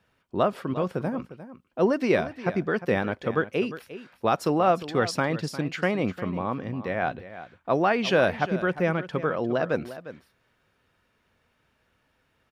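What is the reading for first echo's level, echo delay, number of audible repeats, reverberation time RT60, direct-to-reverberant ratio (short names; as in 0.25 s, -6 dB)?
-14.0 dB, 0.353 s, 1, none, none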